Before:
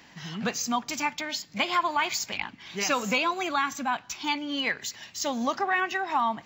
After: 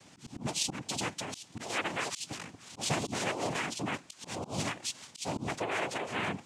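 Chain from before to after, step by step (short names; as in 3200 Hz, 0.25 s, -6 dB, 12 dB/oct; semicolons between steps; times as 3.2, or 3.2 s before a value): band shelf 1400 Hz -9 dB 2.8 oct; added noise pink -58 dBFS; noise vocoder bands 4; auto swell 0.151 s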